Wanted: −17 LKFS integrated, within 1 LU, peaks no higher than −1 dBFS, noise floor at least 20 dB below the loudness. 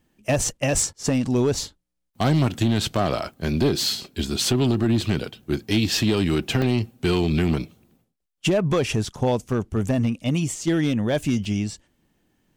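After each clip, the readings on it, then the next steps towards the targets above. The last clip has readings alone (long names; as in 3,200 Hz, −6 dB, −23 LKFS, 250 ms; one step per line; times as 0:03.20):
share of clipped samples 1.7%; peaks flattened at −14.0 dBFS; number of dropouts 5; longest dropout 2.5 ms; integrated loudness −23.0 LKFS; sample peak −14.0 dBFS; target loudness −17.0 LKFS
→ clipped peaks rebuilt −14 dBFS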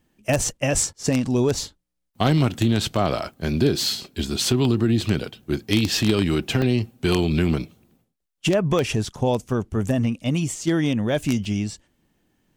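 share of clipped samples 0.0%; number of dropouts 5; longest dropout 2.5 ms
→ repair the gap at 0:01.03/0:02.96/0:05.01/0:06.62/0:11.45, 2.5 ms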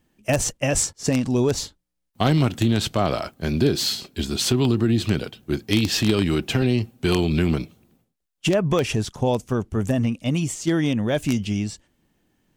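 number of dropouts 0; integrated loudness −22.5 LKFS; sample peak −5.0 dBFS; target loudness −17.0 LKFS
→ level +5.5 dB
brickwall limiter −1 dBFS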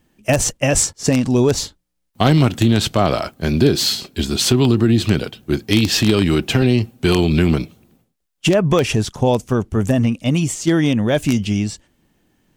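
integrated loudness −17.0 LKFS; sample peak −1.0 dBFS; background noise floor −70 dBFS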